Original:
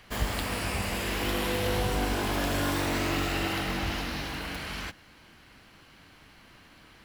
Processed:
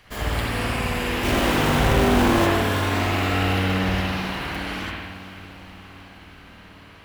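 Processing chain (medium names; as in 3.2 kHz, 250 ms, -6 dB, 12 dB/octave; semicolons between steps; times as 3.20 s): 1.23–2.47 s: square wave that keeps the level; echo that smears into a reverb 462 ms, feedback 65%, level -15.5 dB; spring tank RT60 1.2 s, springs 53 ms, chirp 40 ms, DRR -5.5 dB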